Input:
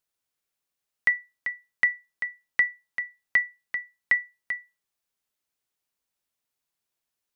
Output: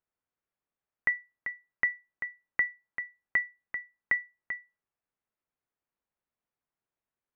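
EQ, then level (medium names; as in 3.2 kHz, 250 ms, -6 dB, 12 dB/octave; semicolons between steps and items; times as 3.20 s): low-pass 2.1 kHz; distance through air 290 m; 0.0 dB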